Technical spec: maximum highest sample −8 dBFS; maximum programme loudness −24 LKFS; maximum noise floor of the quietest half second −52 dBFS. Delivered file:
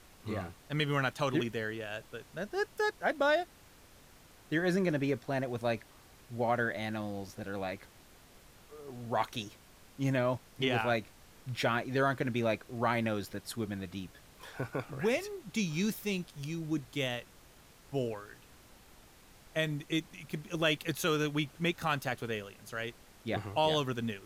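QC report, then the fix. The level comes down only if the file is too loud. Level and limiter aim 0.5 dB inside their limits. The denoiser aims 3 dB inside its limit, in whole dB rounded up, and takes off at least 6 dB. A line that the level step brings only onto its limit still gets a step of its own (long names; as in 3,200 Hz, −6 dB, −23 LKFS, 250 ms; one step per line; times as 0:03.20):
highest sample −15.5 dBFS: in spec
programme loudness −34.0 LKFS: in spec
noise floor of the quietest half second −58 dBFS: in spec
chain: no processing needed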